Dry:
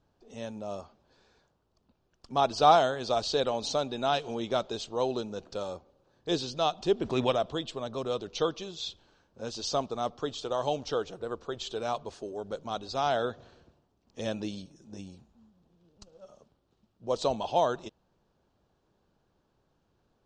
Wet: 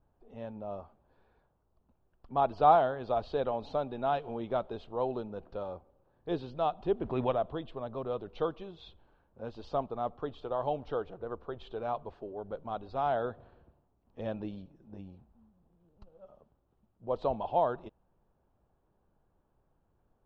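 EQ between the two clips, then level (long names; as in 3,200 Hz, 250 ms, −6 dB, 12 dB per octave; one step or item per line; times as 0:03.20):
high-frequency loss of the air 480 metres
low-shelf EQ 69 Hz +12 dB
parametric band 830 Hz +5 dB 1.4 octaves
−4.5 dB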